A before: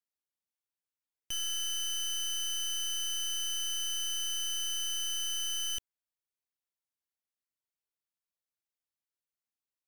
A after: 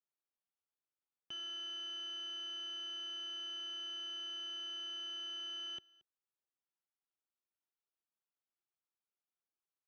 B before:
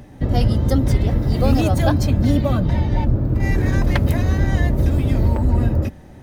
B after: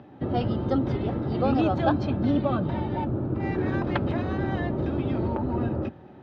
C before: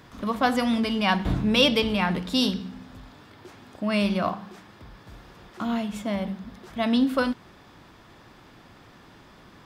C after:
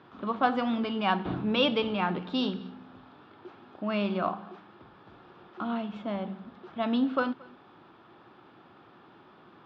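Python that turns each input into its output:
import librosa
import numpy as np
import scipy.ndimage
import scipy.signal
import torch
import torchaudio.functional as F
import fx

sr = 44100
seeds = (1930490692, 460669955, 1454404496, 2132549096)

y = fx.cabinet(x, sr, low_hz=140.0, low_slope=12, high_hz=3600.0, hz=(360.0, 810.0, 1300.0, 2000.0), db=(7, 5, 6, -6))
y = y + 10.0 ** (-24.0 / 20.0) * np.pad(y, (int(227 * sr / 1000.0), 0))[:len(y)]
y = y * 10.0 ** (-5.5 / 20.0)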